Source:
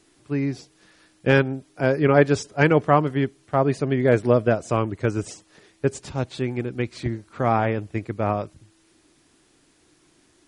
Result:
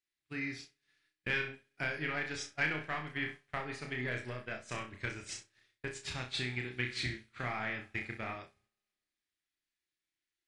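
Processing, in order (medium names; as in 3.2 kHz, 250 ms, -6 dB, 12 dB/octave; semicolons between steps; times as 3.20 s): in parallel at -8.5 dB: hard clipper -16.5 dBFS, distortion -8 dB; on the sum: compression 8:1, threshold -24 dBFS, peak gain reduction 14.5 dB; graphic EQ 125/250/500/1000/2000/4000 Hz -5/-6/-10/-5/+10/+6 dB; on a send: flutter echo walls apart 5.5 m, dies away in 0.4 s; on the sum: spring tank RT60 2.3 s, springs 59 ms, chirp 65 ms, DRR 13 dB; expander -30 dBFS; trim -6.5 dB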